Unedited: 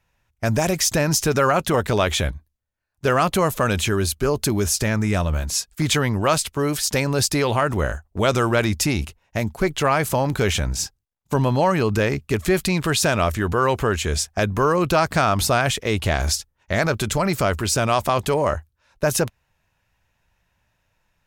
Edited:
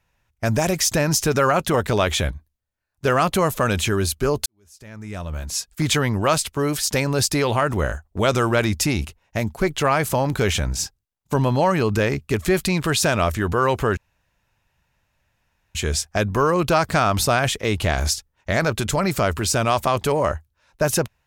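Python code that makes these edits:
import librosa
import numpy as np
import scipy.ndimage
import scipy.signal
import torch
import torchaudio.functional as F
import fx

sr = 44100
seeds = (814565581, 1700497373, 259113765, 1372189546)

y = fx.edit(x, sr, fx.fade_in_span(start_s=4.46, length_s=1.28, curve='qua'),
    fx.insert_room_tone(at_s=13.97, length_s=1.78), tone=tone)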